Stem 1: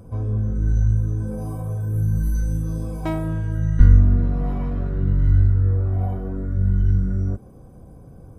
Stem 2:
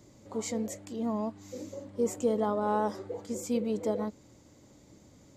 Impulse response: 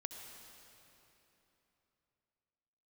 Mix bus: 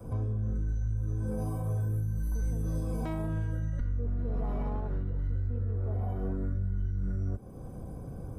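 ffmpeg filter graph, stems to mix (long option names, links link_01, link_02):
-filter_complex "[0:a]adynamicequalizer=threshold=0.0316:dfrequency=160:dqfactor=1.3:tfrequency=160:tqfactor=1.3:attack=5:release=100:ratio=0.375:range=2.5:mode=cutabove:tftype=bell,alimiter=limit=-13.5dB:level=0:latency=1:release=433,volume=2.5dB[link_01];[1:a]lowpass=1200,adelay=2000,volume=-2.5dB[link_02];[link_01][link_02]amix=inputs=2:normalize=0,acrossover=split=120[link_03][link_04];[link_04]acompressor=threshold=-23dB:ratio=6[link_05];[link_03][link_05]amix=inputs=2:normalize=0,alimiter=level_in=0.5dB:limit=-24dB:level=0:latency=1:release=319,volume=-0.5dB"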